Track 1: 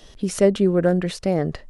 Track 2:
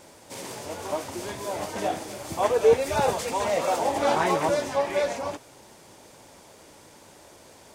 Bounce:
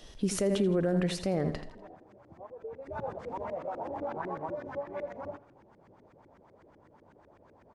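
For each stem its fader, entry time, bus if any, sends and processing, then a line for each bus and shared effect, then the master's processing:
-4.5 dB, 0.00 s, no send, echo send -11.5 dB, dry
2.53 s -22.5 dB -> 3.02 s -11.5 dB, 0.00 s, no send, echo send -17.5 dB, LFO low-pass saw up 8 Hz 300–1900 Hz; tone controls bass +6 dB, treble +10 dB; compressor 3:1, threshold -23 dBFS, peak gain reduction 11.5 dB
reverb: off
echo: feedback echo 82 ms, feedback 36%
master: limiter -19.5 dBFS, peak gain reduction 10.5 dB

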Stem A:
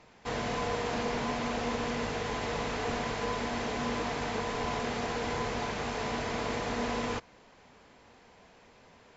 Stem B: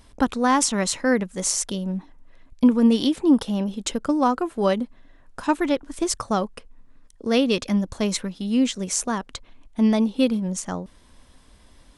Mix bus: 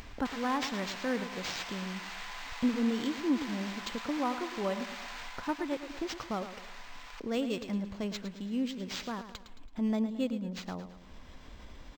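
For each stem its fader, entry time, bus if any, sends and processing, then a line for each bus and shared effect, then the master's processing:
5.19 s -2.5 dB -> 5.56 s -9 dB, 0.00 s, no send, echo send -16 dB, HPF 740 Hz 24 dB/oct; tilt shelf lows -7.5 dB, about 1100 Hz; negative-ratio compressor -40 dBFS, ratio -1
-12.5 dB, 0.00 s, no send, echo send -11 dB, upward compressor, threshold -21 dBFS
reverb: off
echo: feedback echo 0.11 s, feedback 47%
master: decimation joined by straight lines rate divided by 4×

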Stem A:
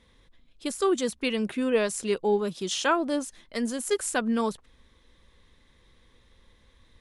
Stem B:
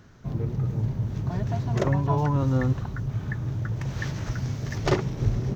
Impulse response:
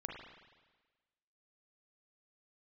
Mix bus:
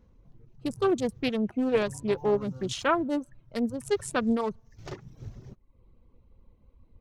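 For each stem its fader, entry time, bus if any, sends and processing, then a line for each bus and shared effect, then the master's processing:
-1.0 dB, 0.00 s, send -23 dB, Wiener smoothing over 25 samples; tone controls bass +5 dB, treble -2 dB
-10.0 dB, 0.00 s, send -22.5 dB, high shelf 5000 Hz +6 dB; step gate "...xxx..xxxxxx" 69 bpm -12 dB; auto duck -8 dB, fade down 0.35 s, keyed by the first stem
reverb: on, RT60 1.3 s, pre-delay 36 ms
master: reverb removal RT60 0.6 s; Doppler distortion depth 0.35 ms

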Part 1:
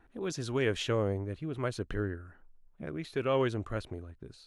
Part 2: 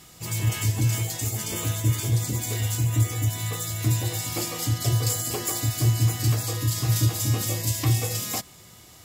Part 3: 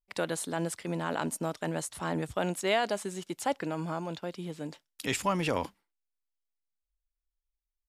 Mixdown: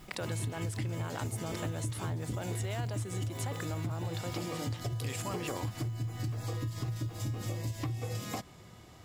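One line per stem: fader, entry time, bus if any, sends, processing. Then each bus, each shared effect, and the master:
-16.0 dB, 0.00 s, bus A, no send, dry
-0.5 dB, 0.00 s, bus A, no send, dry
-9.0 dB, 0.00 s, no bus, no send, modulation noise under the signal 27 dB; fast leveller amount 70%
bus A: 0.0 dB, LPF 1500 Hz 6 dB/oct; compressor, threshold -26 dBFS, peak gain reduction 9.5 dB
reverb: off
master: compressor 4:1, threshold -33 dBFS, peak gain reduction 8.5 dB

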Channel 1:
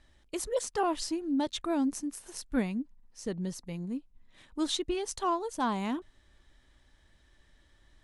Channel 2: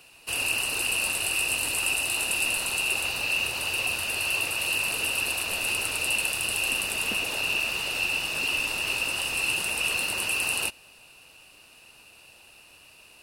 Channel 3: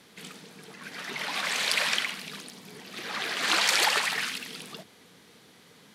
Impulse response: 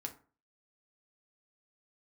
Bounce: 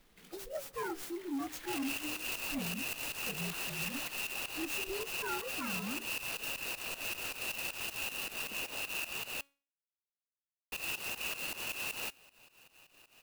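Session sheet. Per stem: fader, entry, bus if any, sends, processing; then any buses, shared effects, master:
-1.0 dB, 0.00 s, no send, inharmonic rescaling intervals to 122%; high shelf 6500 Hz +5.5 dB; de-hum 76.79 Hz, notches 7
-4.0 dB, 1.40 s, muted 9.41–10.72, no send, bell 77 Hz -12.5 dB 0.53 oct; pump 157 bpm, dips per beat 2, -18 dB, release 0.163 s
-9.5 dB, 0.00 s, no send, auto duck -11 dB, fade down 1.45 s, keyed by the first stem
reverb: off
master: resonator 280 Hz, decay 0.39 s, harmonics all, mix 30%; soft clip -31.5 dBFS, distortion -13 dB; clock jitter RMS 0.035 ms

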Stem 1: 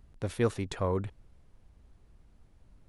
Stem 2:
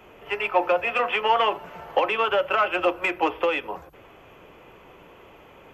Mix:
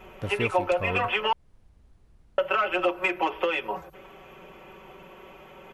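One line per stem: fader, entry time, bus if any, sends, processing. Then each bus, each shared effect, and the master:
+1.0 dB, 0.00 s, no send, dry
-1.0 dB, 0.00 s, muted 1.33–2.38, no send, comb 5.3 ms, depth 86%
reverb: off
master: compressor 2:1, threshold -24 dBFS, peak gain reduction 7 dB

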